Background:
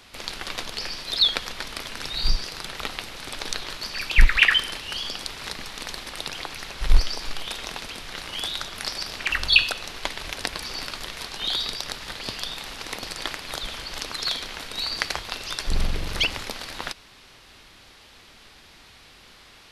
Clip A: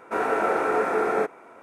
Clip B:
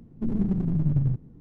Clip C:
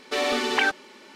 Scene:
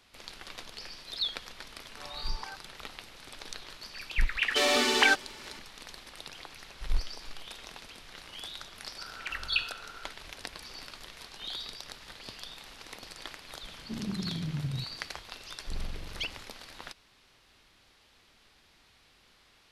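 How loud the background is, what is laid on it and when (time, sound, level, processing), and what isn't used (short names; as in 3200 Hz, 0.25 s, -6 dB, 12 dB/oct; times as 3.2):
background -12.5 dB
1.85 add C -12.5 dB + band-pass 1000 Hz, Q 3.6
4.44 add C -2.5 dB + high shelf 3100 Hz +8.5 dB
8.87 add A -14 dB + double band-pass 2500 Hz, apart 1.5 oct
13.68 add B -9.5 dB + HPF 95 Hz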